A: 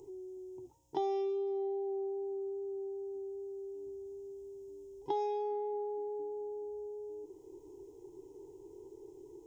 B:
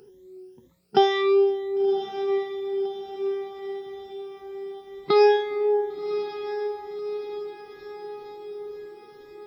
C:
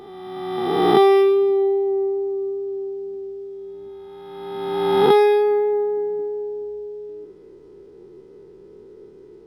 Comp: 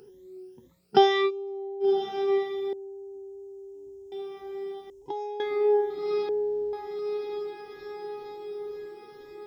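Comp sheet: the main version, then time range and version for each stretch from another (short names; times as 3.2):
B
1.28–1.83 from A, crossfade 0.06 s
2.73–4.12 from A
4.9–5.4 from A
6.29–6.73 from C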